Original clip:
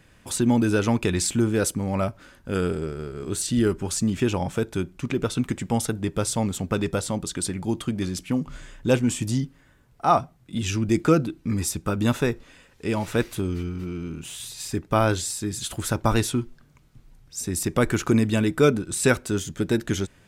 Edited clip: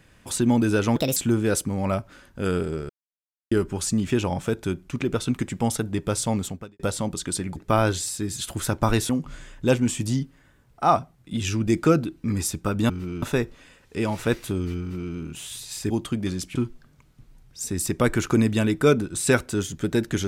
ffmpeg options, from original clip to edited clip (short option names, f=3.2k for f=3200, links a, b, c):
-filter_complex "[0:a]asplit=12[a][b][c][d][e][f][g][h][i][j][k][l];[a]atrim=end=0.964[m];[b]atrim=start=0.96:end=1.26,asetpts=PTS-STARTPTS,asetrate=64827,aresample=44100[n];[c]atrim=start=1.256:end=2.99,asetpts=PTS-STARTPTS,afade=t=out:st=1.73:d=0.004:c=hsin[o];[d]atrim=start=2.99:end=3.61,asetpts=PTS-STARTPTS,volume=0[p];[e]atrim=start=3.61:end=6.89,asetpts=PTS-STARTPTS,afade=t=in:d=0.004:c=hsin,afade=t=out:st=2.93:d=0.35:c=qua[q];[f]atrim=start=6.89:end=7.662,asetpts=PTS-STARTPTS,afade=t=in:d=0.004:c=hsin[r];[g]atrim=start=14.788:end=16.322[s];[h]atrim=start=8.308:end=12.112[t];[i]atrim=start=13.688:end=14.022[u];[j]atrim=start=12.108:end=14.792[v];[k]atrim=start=7.658:end=8.312[w];[l]atrim=start=16.318[x];[m][n]acrossfade=d=0.004:c1=hsin:c2=hsin[y];[o][p][q][r]concat=n=4:v=0:a=1[z];[y][z]acrossfade=d=0.004:c1=hsin:c2=hsin[aa];[aa][s]acrossfade=d=0.004:c1=hsin:c2=hsin[ab];[ab][t]acrossfade=d=0.004:c1=hsin:c2=hsin[ac];[ac][u]acrossfade=d=0.004:c1=hsin:c2=hsin[ad];[ad][v]acrossfade=d=0.004:c1=hsin:c2=hsin[ae];[ae][w]acrossfade=d=0.004:c1=hsin:c2=hsin[af];[af][x]acrossfade=d=0.004:c1=hsin:c2=hsin"